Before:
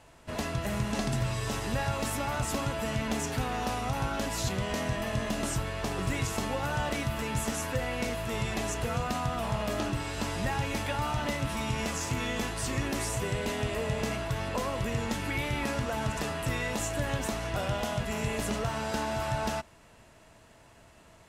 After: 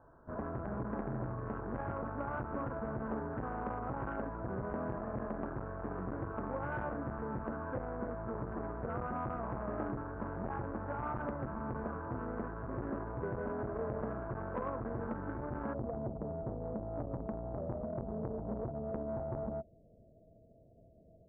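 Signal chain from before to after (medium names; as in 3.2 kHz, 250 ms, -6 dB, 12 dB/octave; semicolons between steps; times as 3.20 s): rippled Chebyshev low-pass 1.6 kHz, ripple 3 dB, from 15.73 s 680 Hz; transformer saturation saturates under 550 Hz; trim -2 dB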